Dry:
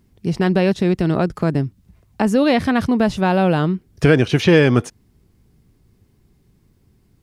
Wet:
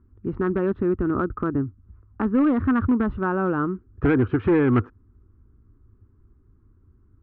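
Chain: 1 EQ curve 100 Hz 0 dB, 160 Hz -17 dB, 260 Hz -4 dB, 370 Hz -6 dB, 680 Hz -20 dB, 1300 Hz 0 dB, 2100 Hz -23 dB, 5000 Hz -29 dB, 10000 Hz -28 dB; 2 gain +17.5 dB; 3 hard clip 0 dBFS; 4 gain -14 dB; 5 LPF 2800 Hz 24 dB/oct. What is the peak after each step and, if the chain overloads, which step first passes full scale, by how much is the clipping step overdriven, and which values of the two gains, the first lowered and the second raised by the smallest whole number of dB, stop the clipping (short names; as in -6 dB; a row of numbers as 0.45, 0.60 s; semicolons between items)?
-10.5, +7.0, 0.0, -14.0, -13.5 dBFS; step 2, 7.0 dB; step 2 +10.5 dB, step 4 -7 dB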